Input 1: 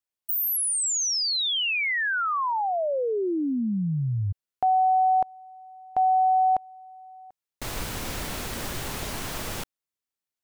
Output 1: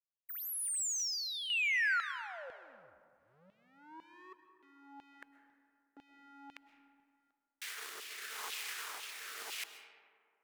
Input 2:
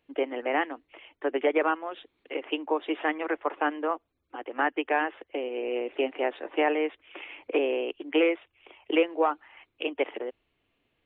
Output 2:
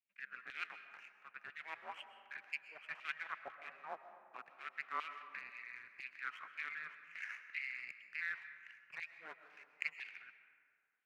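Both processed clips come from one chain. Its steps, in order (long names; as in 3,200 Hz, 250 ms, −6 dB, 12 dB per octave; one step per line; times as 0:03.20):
reversed playback
downward compressor 4 to 1, threshold −32 dBFS
reversed playback
frequency shifter −470 Hz
power curve on the samples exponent 1.4
auto-filter high-pass saw down 2 Hz 900–2,900 Hz
rotating-speaker cabinet horn 0.9 Hz
comb and all-pass reverb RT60 2.2 s, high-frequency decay 0.4×, pre-delay 85 ms, DRR 9.5 dB
level +1.5 dB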